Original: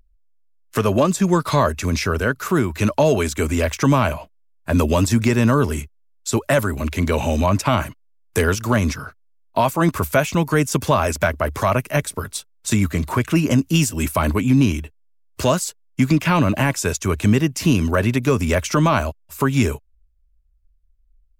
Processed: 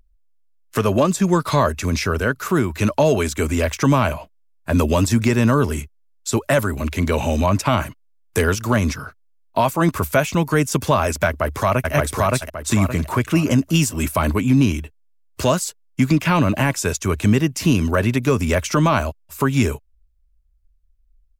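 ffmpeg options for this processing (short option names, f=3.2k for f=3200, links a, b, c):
-filter_complex "[0:a]asplit=2[a][b];[b]afade=t=in:st=11.27:d=0.01,afade=t=out:st=11.92:d=0.01,aecho=0:1:570|1140|1710|2280|2850:0.944061|0.330421|0.115647|0.0404766|0.0141668[c];[a][c]amix=inputs=2:normalize=0"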